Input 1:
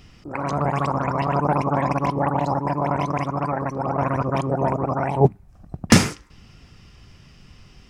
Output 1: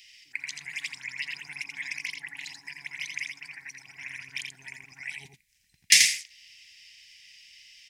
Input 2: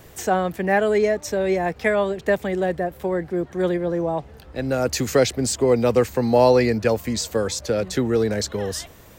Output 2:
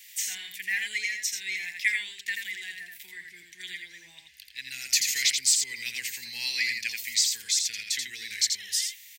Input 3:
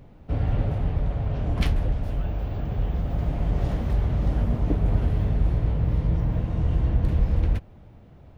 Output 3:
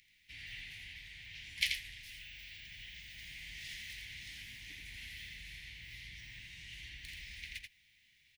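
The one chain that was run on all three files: elliptic high-pass 2 kHz, stop band 40 dB; on a send: delay 84 ms -5 dB; on the sum: trim +4 dB

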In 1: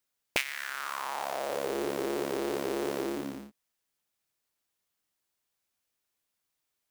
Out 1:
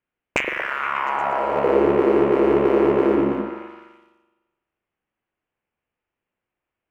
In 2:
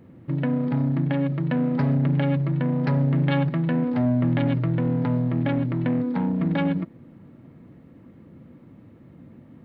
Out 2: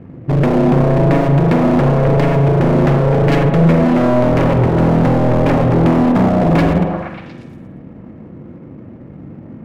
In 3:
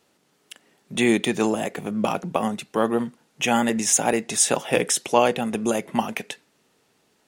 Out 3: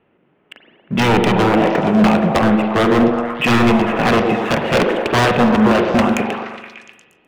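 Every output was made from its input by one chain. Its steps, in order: steep low-pass 2.9 kHz 48 dB/octave; bass shelf 400 Hz +6.5 dB; waveshaping leveller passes 1; in parallel at +2.5 dB: level held to a coarse grid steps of 9 dB; on the sum: wavefolder -9 dBFS; on a send: repeats whose band climbs or falls 118 ms, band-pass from 400 Hz, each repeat 0.7 oct, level -1 dB; on the sum: spring tank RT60 1.2 s, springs 42 ms, chirp 65 ms, DRR 6.5 dB

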